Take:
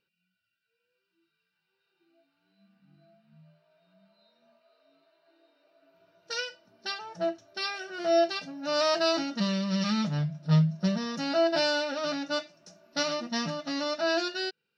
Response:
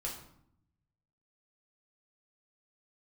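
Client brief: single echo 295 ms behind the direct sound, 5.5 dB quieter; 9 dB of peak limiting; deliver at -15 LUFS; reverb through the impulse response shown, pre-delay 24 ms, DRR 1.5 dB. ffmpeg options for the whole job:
-filter_complex "[0:a]alimiter=limit=0.0708:level=0:latency=1,aecho=1:1:295:0.531,asplit=2[s0][s1];[1:a]atrim=start_sample=2205,adelay=24[s2];[s1][s2]afir=irnorm=-1:irlink=0,volume=0.794[s3];[s0][s3]amix=inputs=2:normalize=0,volume=4.73"

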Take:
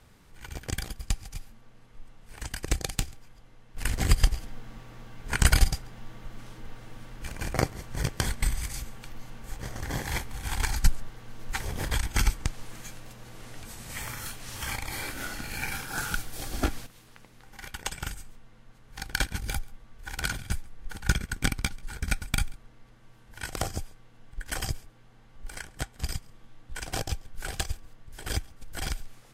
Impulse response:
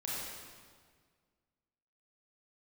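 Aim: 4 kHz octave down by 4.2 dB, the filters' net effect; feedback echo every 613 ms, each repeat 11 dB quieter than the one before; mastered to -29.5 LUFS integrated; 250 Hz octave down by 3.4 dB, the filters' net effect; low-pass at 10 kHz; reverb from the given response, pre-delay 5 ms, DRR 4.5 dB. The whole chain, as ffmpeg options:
-filter_complex "[0:a]lowpass=10000,equalizer=f=250:t=o:g=-5,equalizer=f=4000:t=o:g=-5.5,aecho=1:1:613|1226|1839:0.282|0.0789|0.0221,asplit=2[s0][s1];[1:a]atrim=start_sample=2205,adelay=5[s2];[s1][s2]afir=irnorm=-1:irlink=0,volume=0.422[s3];[s0][s3]amix=inputs=2:normalize=0,volume=1.58"

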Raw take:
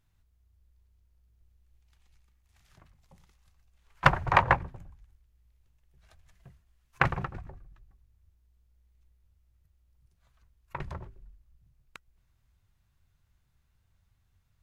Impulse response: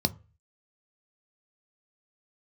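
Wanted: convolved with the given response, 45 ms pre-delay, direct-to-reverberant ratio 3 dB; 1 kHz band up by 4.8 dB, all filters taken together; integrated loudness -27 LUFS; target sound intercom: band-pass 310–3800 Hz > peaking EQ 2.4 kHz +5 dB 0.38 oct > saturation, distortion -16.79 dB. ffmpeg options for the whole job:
-filter_complex "[0:a]equalizer=f=1000:t=o:g=5.5,asplit=2[s0][s1];[1:a]atrim=start_sample=2205,adelay=45[s2];[s1][s2]afir=irnorm=-1:irlink=0,volume=0.299[s3];[s0][s3]amix=inputs=2:normalize=0,highpass=310,lowpass=3800,equalizer=f=2400:t=o:w=0.38:g=5,asoftclip=threshold=0.531,volume=0.668"

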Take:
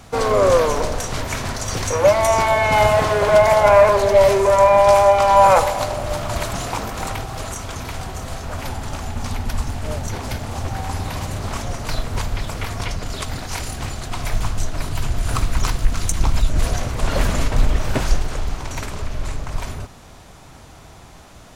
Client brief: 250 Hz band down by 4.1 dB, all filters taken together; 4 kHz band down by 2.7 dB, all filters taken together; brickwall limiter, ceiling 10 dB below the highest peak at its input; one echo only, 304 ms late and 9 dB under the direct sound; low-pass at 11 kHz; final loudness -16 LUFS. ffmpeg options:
-af "lowpass=11000,equalizer=f=250:t=o:g=-6,equalizer=f=4000:t=o:g=-3.5,alimiter=limit=0.251:level=0:latency=1,aecho=1:1:304:0.355,volume=2.51"

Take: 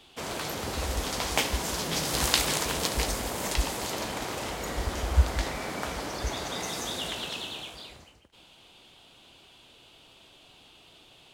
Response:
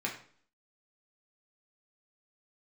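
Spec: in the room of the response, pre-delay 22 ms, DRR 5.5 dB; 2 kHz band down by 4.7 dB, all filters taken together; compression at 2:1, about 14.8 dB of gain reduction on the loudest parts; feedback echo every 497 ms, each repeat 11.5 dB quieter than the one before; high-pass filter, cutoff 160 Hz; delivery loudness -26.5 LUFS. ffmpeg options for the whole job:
-filter_complex "[0:a]highpass=160,equalizer=f=2000:t=o:g=-6,acompressor=threshold=0.00355:ratio=2,aecho=1:1:497|994|1491:0.266|0.0718|0.0194,asplit=2[s0][s1];[1:a]atrim=start_sample=2205,adelay=22[s2];[s1][s2]afir=irnorm=-1:irlink=0,volume=0.316[s3];[s0][s3]amix=inputs=2:normalize=0,volume=5.62"

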